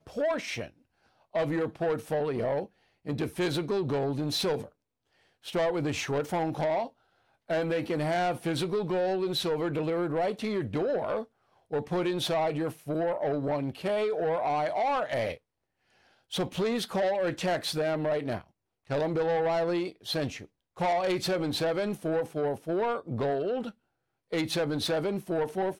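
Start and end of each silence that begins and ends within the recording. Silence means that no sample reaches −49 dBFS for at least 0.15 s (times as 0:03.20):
0:00.70–0:01.34
0:02.66–0:03.05
0:04.69–0:05.44
0:06.90–0:07.49
0:11.24–0:11.71
0:15.37–0:16.31
0:18.47–0:18.89
0:20.46–0:20.77
0:23.71–0:24.32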